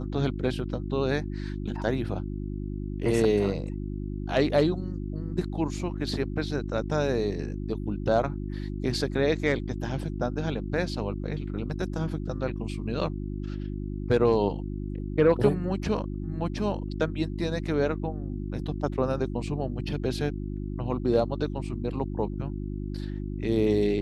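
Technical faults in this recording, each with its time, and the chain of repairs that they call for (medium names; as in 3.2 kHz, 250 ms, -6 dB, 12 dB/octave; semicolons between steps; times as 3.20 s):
hum 50 Hz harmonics 7 -33 dBFS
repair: de-hum 50 Hz, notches 7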